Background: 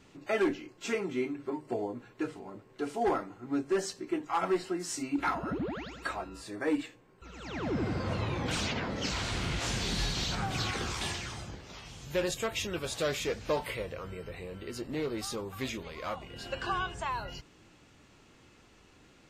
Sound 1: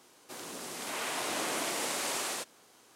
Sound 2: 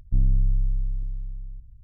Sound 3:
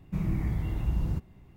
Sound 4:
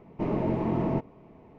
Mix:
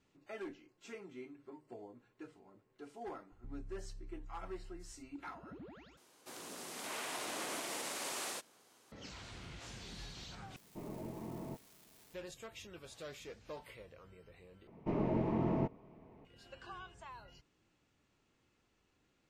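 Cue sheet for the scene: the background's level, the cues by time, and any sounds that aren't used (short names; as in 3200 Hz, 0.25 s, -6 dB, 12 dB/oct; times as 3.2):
background -17 dB
3.32 add 2 -17 dB + compressor 4:1, threshold -30 dBFS
5.97 replace with 1 -6 dB + limiter -25 dBFS
10.56 replace with 4 -18 dB + switching spikes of -29 dBFS
14.67 replace with 4 -6.5 dB
not used: 3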